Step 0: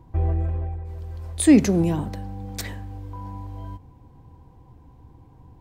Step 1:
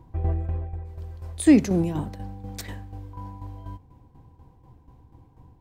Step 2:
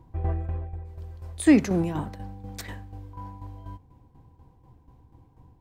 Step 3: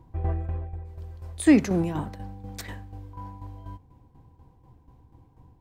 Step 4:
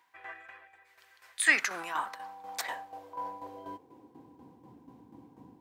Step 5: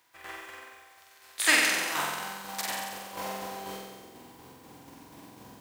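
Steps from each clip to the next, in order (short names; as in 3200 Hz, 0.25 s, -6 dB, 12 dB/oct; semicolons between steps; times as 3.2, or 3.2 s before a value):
tremolo saw down 4.1 Hz, depth 65%
dynamic EQ 1400 Hz, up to +7 dB, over -46 dBFS, Q 0.7; gain -2.5 dB
nothing audible
high-pass sweep 1800 Hz -> 240 Hz, 1.34–4.54; gain +3 dB
spectral contrast lowered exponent 0.51; flutter echo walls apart 7.9 m, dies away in 1.3 s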